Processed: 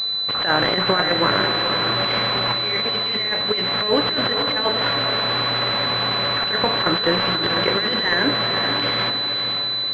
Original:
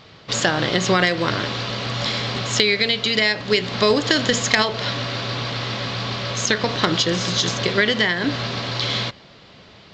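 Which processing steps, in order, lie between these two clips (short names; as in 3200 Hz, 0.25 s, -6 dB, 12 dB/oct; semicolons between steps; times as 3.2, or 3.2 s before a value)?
tilt +3.5 dB/oct; negative-ratio compressor -19 dBFS, ratio -0.5; air absorption 110 m; diffused feedback echo 0.51 s, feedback 42%, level -6.5 dB; pulse-width modulation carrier 4000 Hz; gain +4 dB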